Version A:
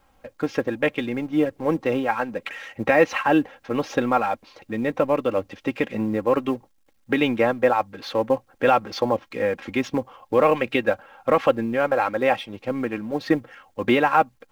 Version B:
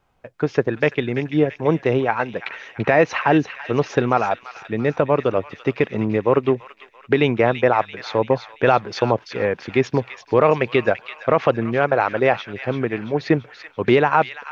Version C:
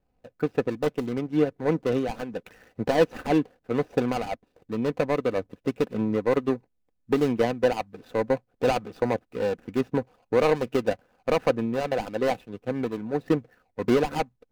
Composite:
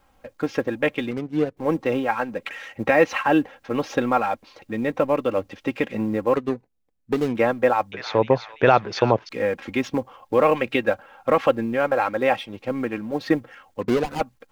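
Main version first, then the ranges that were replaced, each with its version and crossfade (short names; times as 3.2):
A
1.11–1.57 from C
6.36–7.35 from C
7.92–9.29 from B
13.81–14.21 from C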